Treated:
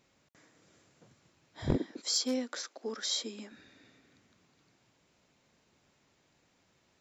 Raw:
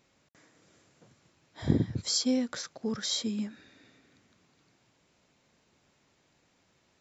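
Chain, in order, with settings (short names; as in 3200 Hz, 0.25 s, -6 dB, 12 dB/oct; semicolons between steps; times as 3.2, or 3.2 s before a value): one-sided fold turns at -19.5 dBFS; 1.76–3.52 steep high-pass 270 Hz 36 dB/oct; gain -1.5 dB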